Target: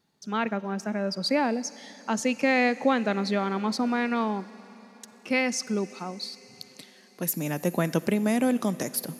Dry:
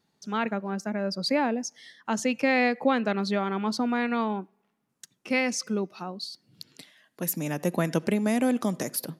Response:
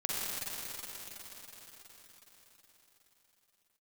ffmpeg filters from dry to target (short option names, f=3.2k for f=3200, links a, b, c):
-filter_complex "[0:a]asplit=2[a][b];[1:a]atrim=start_sample=2205,highshelf=f=4.1k:g=7.5[c];[b][c]afir=irnorm=-1:irlink=0,volume=-25dB[d];[a][d]amix=inputs=2:normalize=0"